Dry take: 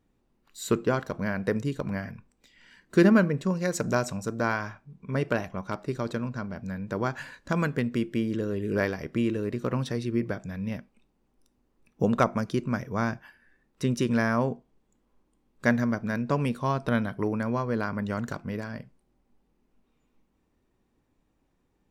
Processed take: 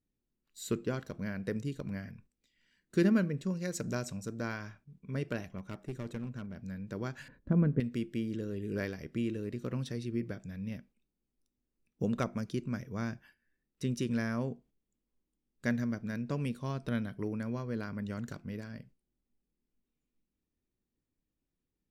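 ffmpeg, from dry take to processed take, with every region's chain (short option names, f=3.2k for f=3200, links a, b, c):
-filter_complex "[0:a]asettb=1/sr,asplit=3[a][b][c];[a]atrim=end=5.584[d];[b]atrim=start=5.58:end=6.56,asetpts=PTS-STARTPTS,afade=t=in:d=0.004:c=qsin,afade=t=out:st=0.976:d=0.004:c=qsin,equalizer=f=4.6k:t=o:w=0.55:g=-10,aeval=exprs='clip(val(0),-1,0.0355)':c=same[e];[c]atrim=start=6.556[f];[d][e]acrossfade=d=0.004:c1=hsin:c2=qsin[g];[g][f]acrossfade=d=0.004:c1=qsin:c2=hsin,asettb=1/sr,asplit=3[h][i][j];[h]atrim=end=7.284[k];[i]atrim=start=7.28:end=7.8,asetpts=PTS-STARTPTS,afade=t=in:d=0.004:c=qsin,afade=t=out:st=0.516:d=0.004:c=qsin,lowpass=1.9k,tiltshelf=f=870:g=9[l];[j]atrim=start=7.796[m];[k][l]acrossfade=d=0.004:c1=hsin:c2=qsin[n];[n][m]acrossfade=d=0.004:c1=qsin:c2=hsin,agate=range=-8dB:threshold=-51dB:ratio=16:detection=peak,equalizer=f=920:w=0.88:g=-10,volume=-6dB"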